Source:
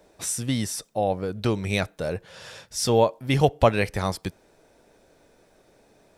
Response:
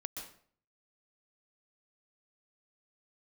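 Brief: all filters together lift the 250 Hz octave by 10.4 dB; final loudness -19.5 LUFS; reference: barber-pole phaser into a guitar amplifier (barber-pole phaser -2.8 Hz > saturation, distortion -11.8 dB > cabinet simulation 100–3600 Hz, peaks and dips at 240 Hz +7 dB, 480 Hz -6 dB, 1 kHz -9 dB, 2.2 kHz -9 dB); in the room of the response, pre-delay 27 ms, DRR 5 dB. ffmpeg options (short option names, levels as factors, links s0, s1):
-filter_complex "[0:a]equalizer=f=250:t=o:g=8,asplit=2[s0][s1];[1:a]atrim=start_sample=2205,adelay=27[s2];[s1][s2]afir=irnorm=-1:irlink=0,volume=0.631[s3];[s0][s3]amix=inputs=2:normalize=0,asplit=2[s4][s5];[s5]afreqshift=-2.8[s6];[s4][s6]amix=inputs=2:normalize=1,asoftclip=threshold=0.126,highpass=100,equalizer=f=240:t=q:w=4:g=7,equalizer=f=480:t=q:w=4:g=-6,equalizer=f=1000:t=q:w=4:g=-9,equalizer=f=2200:t=q:w=4:g=-9,lowpass=f=3600:w=0.5412,lowpass=f=3600:w=1.3066,volume=2"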